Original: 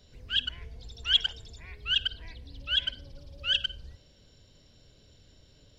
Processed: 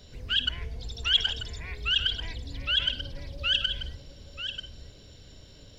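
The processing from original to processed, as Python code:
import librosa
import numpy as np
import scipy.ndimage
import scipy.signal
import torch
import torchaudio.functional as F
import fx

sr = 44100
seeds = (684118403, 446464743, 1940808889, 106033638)

p1 = fx.over_compress(x, sr, threshold_db=-32.0, ratio=-0.5)
p2 = x + (p1 * librosa.db_to_amplitude(-2.0))
y = p2 + 10.0 ** (-9.5 / 20.0) * np.pad(p2, (int(939 * sr / 1000.0), 0))[:len(p2)]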